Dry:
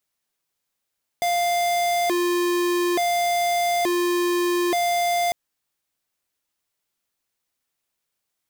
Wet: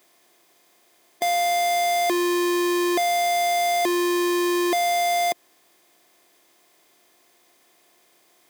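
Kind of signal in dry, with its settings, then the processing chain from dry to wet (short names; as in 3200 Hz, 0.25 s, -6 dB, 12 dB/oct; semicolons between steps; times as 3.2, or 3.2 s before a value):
siren hi-lo 351–698 Hz 0.57/s square -21.5 dBFS 4.10 s
per-bin compression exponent 0.6; HPF 190 Hz 12 dB/oct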